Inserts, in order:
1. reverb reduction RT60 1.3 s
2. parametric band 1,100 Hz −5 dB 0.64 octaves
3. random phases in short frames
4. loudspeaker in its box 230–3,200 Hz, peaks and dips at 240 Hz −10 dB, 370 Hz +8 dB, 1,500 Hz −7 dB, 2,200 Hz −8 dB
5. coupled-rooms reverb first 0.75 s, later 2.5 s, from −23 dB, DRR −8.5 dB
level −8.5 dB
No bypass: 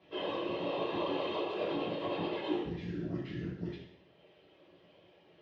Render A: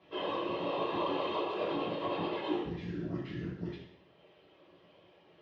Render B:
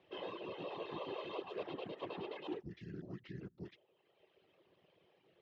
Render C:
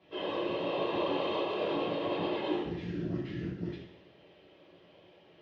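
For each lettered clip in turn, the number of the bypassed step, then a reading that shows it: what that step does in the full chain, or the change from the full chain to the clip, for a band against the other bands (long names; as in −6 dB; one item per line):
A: 2, 1 kHz band +3.5 dB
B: 5, change in integrated loudness −9.5 LU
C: 1, change in integrated loudness +2.5 LU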